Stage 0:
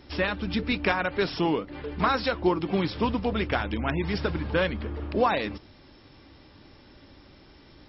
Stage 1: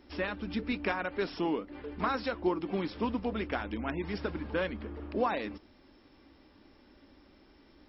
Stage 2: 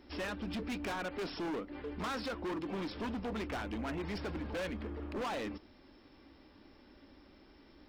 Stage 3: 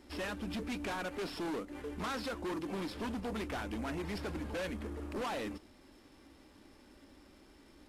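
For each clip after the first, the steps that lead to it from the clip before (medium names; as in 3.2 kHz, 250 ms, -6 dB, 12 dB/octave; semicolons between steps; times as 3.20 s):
graphic EQ 125/250/4000 Hz -11/+5/-4 dB; trim -7 dB
overload inside the chain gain 35 dB
CVSD coder 64 kbps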